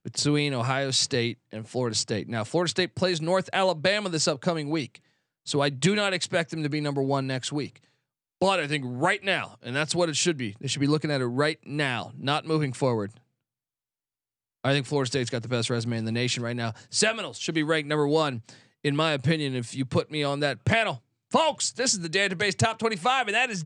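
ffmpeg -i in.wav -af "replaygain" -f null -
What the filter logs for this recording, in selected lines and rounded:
track_gain = +6.1 dB
track_peak = 0.379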